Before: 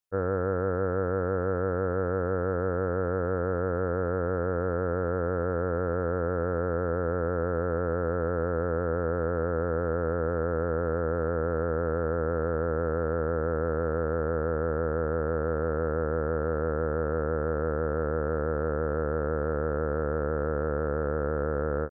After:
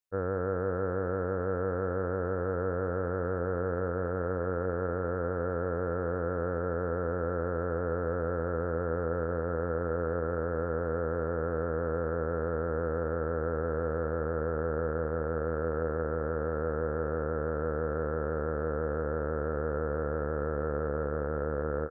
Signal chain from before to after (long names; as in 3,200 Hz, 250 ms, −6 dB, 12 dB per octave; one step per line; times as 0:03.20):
feedback echo with a high-pass in the loop 201 ms, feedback 76%, level −11 dB
level −3.5 dB